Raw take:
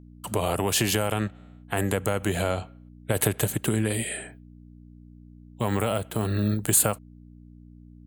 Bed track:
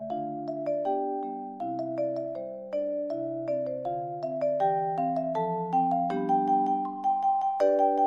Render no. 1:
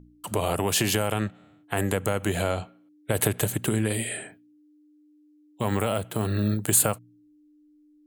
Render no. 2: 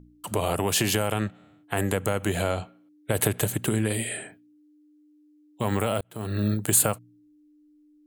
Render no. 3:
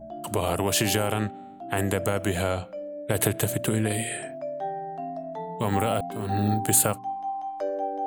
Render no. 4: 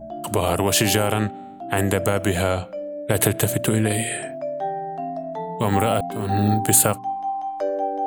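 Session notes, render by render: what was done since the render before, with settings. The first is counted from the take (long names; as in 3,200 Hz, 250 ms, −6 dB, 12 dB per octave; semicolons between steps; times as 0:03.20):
hum removal 60 Hz, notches 4
0:06.01–0:06.44: fade in
mix in bed track −6 dB
level +5 dB; brickwall limiter −3 dBFS, peak gain reduction 1 dB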